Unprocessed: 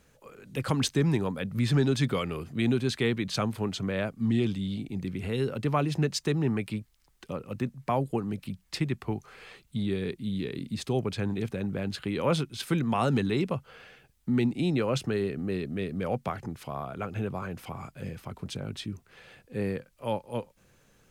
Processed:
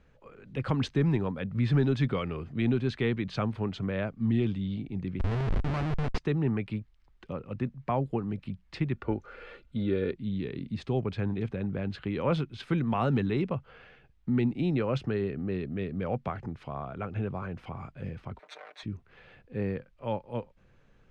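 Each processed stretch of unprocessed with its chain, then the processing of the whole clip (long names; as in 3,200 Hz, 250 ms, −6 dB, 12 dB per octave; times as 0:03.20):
0:05.19–0:06.18: high-shelf EQ 2,600 Hz −3.5 dB + log-companded quantiser 6 bits + comparator with hysteresis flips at −31 dBFS
0:08.95–0:10.13: comb filter 3.4 ms, depth 46% + hollow resonant body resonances 480/1,400 Hz, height 13 dB, ringing for 30 ms
0:18.39–0:18.83: lower of the sound and its delayed copy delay 0.49 ms + high-pass filter 600 Hz 24 dB per octave + comb filter 6.6 ms, depth 85%
whole clip: low-pass filter 2,900 Hz 12 dB per octave; low-shelf EQ 68 Hz +10.5 dB; level −2 dB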